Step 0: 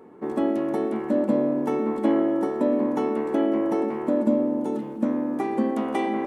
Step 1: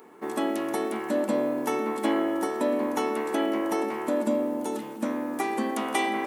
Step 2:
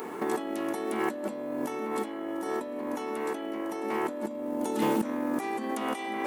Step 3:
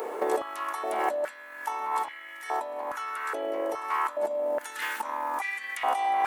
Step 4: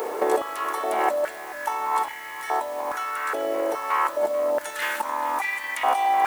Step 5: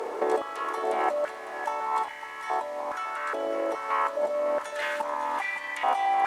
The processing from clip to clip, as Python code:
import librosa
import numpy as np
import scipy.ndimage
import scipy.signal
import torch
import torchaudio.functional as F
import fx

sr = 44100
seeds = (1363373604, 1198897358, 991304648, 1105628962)

y1 = fx.tilt_eq(x, sr, slope=4.0)
y1 = fx.notch(y1, sr, hz=540.0, q=13.0)
y1 = F.gain(torch.from_numpy(y1), 2.0).numpy()
y2 = fx.over_compress(y1, sr, threshold_db=-37.0, ratio=-1.0)
y2 = F.gain(torch.from_numpy(y2), 4.5).numpy()
y3 = fx.filter_held_highpass(y2, sr, hz=2.4, low_hz=530.0, high_hz=2000.0)
y4 = y3 + 10.0 ** (-15.5 / 20.0) * np.pad(y3, (int(433 * sr / 1000.0), 0))[:len(y3)]
y4 = fx.dmg_noise_colour(y4, sr, seeds[0], colour='white', level_db=-54.0)
y4 = F.gain(torch.from_numpy(y4), 5.0).numpy()
y5 = fx.air_absorb(y4, sr, metres=59.0)
y5 = y5 + 10.0 ** (-11.0 / 20.0) * np.pad(y5, (int(555 * sr / 1000.0), 0))[:len(y5)]
y5 = F.gain(torch.from_numpy(y5), -3.5).numpy()